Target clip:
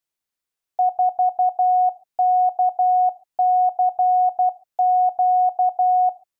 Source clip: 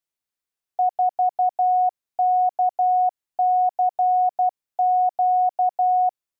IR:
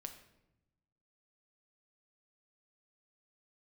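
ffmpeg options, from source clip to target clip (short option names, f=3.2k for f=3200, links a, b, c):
-filter_complex "[0:a]asplit=2[a][b];[1:a]atrim=start_sample=2205,atrim=end_sample=6615[c];[b][c]afir=irnorm=-1:irlink=0,volume=-5.5dB[d];[a][d]amix=inputs=2:normalize=0"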